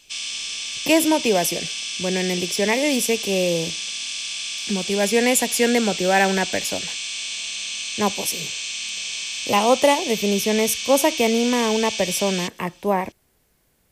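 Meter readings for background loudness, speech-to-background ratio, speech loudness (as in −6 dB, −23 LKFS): −26.5 LKFS, 5.5 dB, −21.0 LKFS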